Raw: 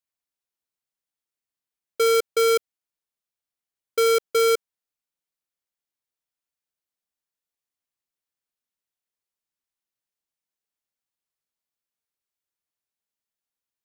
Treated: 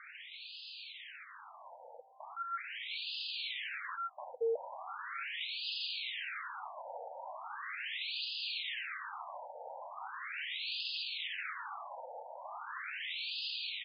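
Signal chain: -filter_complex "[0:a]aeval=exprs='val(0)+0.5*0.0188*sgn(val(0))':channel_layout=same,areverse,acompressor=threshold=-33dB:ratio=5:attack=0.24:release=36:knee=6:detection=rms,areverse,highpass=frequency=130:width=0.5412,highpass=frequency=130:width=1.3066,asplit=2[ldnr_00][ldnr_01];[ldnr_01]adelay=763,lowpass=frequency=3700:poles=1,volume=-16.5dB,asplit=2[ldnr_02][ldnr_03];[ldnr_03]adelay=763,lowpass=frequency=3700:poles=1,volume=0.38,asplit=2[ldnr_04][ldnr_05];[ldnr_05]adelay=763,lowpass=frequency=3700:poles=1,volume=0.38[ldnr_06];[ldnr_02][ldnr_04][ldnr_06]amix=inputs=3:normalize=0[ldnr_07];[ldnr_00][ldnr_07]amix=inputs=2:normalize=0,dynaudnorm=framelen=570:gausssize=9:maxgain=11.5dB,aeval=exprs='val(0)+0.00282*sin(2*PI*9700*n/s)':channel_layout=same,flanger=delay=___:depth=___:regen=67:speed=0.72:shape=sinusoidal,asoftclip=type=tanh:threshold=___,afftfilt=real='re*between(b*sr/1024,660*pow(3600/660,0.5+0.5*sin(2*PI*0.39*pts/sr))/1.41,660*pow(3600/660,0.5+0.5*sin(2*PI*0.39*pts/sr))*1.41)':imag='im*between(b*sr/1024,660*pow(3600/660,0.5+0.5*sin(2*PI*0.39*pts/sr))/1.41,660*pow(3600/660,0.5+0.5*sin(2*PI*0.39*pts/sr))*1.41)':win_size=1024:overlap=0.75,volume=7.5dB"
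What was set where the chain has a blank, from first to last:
0.1, 2.5, -31.5dB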